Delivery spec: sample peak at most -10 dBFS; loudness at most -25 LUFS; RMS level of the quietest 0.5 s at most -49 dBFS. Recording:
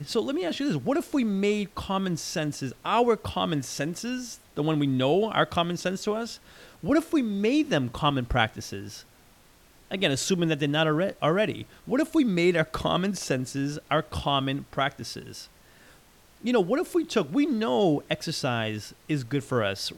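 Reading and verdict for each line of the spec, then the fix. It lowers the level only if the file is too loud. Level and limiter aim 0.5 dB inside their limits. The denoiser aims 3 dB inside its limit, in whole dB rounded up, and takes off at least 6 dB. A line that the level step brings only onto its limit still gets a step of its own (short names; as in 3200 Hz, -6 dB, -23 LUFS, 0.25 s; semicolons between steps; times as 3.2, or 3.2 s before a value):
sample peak -6.5 dBFS: fail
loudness -26.5 LUFS: OK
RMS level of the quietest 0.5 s -56 dBFS: OK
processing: limiter -10.5 dBFS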